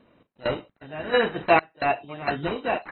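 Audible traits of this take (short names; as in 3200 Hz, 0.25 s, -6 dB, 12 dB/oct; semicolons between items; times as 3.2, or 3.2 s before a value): a quantiser's noise floor 12-bit, dither none; random-step tremolo 4.4 Hz, depth 95%; aliases and images of a low sample rate 3400 Hz, jitter 0%; AAC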